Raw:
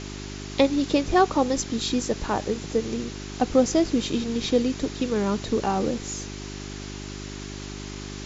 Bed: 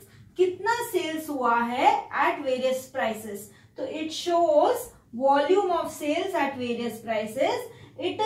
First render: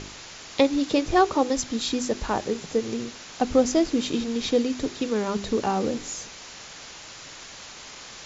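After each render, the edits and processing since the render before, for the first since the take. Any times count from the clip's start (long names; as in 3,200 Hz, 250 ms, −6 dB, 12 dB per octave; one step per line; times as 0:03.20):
hum removal 50 Hz, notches 8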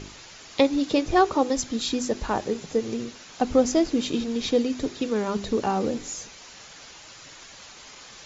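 broadband denoise 6 dB, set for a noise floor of −43 dBFS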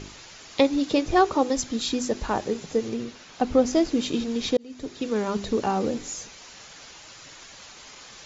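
0:02.89–0:03.73: high-frequency loss of the air 61 metres
0:04.57–0:05.16: fade in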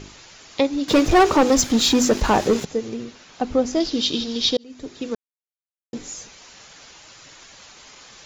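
0:00.88–0:02.65: leveller curve on the samples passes 3
0:03.80–0:04.64: flat-topped bell 4,100 Hz +12 dB 1.1 octaves
0:05.15–0:05.93: silence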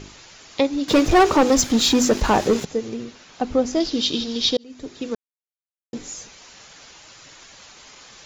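no processing that can be heard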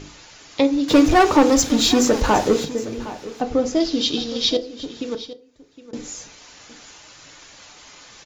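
single-tap delay 763 ms −16 dB
feedback delay network reverb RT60 0.42 s, low-frequency decay 1×, high-frequency decay 0.55×, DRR 8 dB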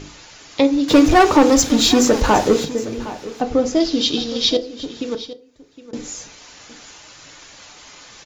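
level +2.5 dB
brickwall limiter −3 dBFS, peak gain reduction 1.5 dB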